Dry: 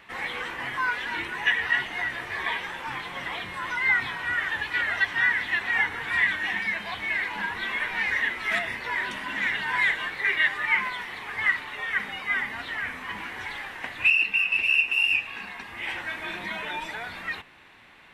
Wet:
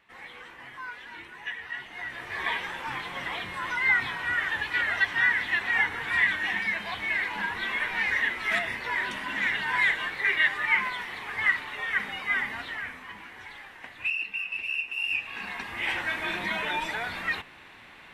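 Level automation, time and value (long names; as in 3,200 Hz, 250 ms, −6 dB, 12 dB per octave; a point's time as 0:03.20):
0:01.74 −12.5 dB
0:02.46 −0.5 dB
0:12.53 −0.5 dB
0:13.19 −9 dB
0:14.95 −9 dB
0:15.52 +3 dB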